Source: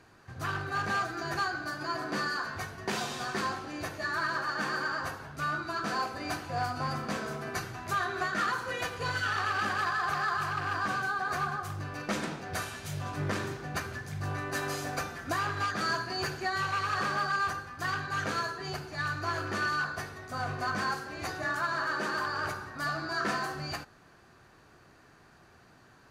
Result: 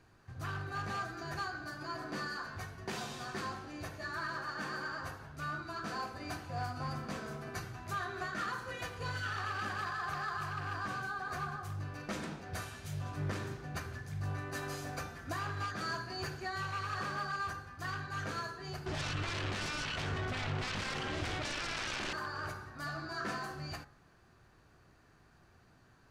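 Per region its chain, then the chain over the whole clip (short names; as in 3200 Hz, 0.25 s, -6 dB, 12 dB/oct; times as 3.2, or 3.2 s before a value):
18.86–22.13 self-modulated delay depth 0.85 ms + air absorption 100 m + fast leveller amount 100%
whole clip: low shelf 120 Hz +10.5 dB; de-hum 69.06 Hz, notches 32; gain -7.5 dB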